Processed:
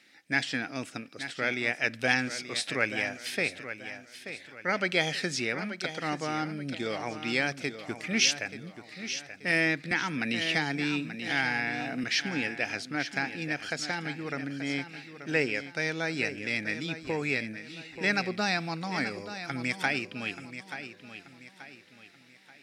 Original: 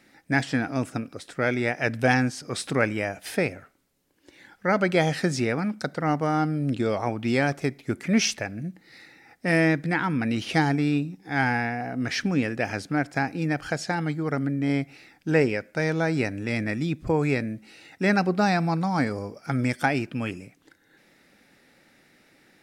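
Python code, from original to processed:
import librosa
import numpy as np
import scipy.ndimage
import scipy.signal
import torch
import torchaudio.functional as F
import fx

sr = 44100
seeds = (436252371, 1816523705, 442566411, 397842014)

y = fx.weighting(x, sr, curve='D')
y = fx.echo_feedback(y, sr, ms=882, feedback_pct=38, wet_db=-11.0)
y = fx.band_squash(y, sr, depth_pct=70, at=(9.91, 12.04))
y = y * 10.0 ** (-8.0 / 20.0)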